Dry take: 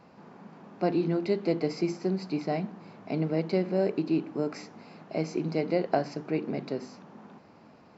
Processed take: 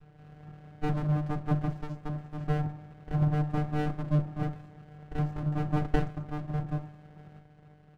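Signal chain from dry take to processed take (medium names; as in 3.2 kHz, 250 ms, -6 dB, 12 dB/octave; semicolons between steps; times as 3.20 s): octave divider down 1 oct, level -5 dB; high-order bell 810 Hz +11 dB 1.3 oct; vocoder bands 8, square 150 Hz; 1.81–2.41 s: bass shelf 240 Hz -6.5 dB; on a send: feedback delay 74 ms, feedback 59%, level -21 dB; on the sum: Schroeder reverb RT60 0.37 s, combs from 28 ms, DRR 14.5 dB; sliding maximum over 65 samples; trim -2 dB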